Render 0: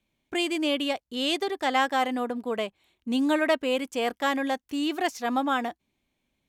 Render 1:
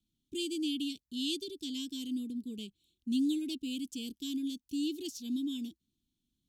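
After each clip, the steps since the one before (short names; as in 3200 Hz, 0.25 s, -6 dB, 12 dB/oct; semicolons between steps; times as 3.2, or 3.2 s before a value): inverse Chebyshev band-stop 540–2000 Hz, stop band 40 dB; gain -4 dB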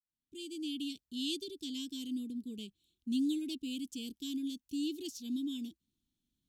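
opening faded in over 0.97 s; gain -2 dB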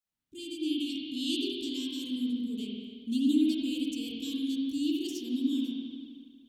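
spring tank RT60 1.9 s, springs 48/58 ms, chirp 40 ms, DRR -4 dB; gain +2 dB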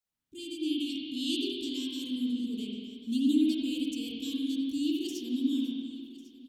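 echo 1.098 s -19.5 dB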